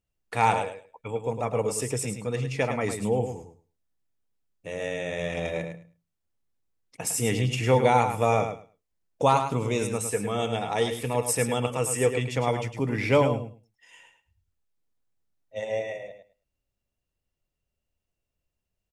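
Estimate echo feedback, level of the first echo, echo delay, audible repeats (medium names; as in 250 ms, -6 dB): 16%, -8.0 dB, 106 ms, 2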